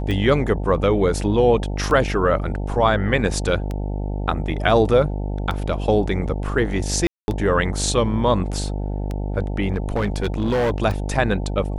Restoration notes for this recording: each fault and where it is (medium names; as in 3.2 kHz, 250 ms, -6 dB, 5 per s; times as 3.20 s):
buzz 50 Hz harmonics 18 -25 dBFS
tick 33 1/3 rpm -15 dBFS
7.07–7.28 s: dropout 211 ms
9.74–10.72 s: clipped -16.5 dBFS